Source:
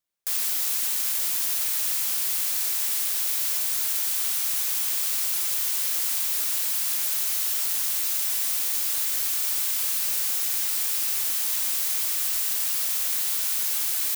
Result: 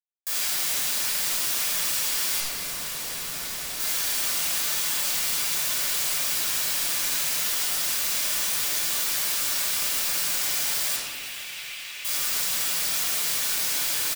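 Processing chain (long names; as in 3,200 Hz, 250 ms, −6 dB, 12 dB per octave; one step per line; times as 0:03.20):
comb filter 6.8 ms, depth 38%
0:02.40–0:03.80: tube saturation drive 29 dB, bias 0.55
bit reduction 7 bits
0:10.96–0:12.05: resonant band-pass 2,600 Hz, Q 2.7
feedback delay with all-pass diffusion 469 ms, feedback 62%, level −14.5 dB
convolution reverb RT60 1.4 s, pre-delay 12 ms, DRR −7 dB
level −5 dB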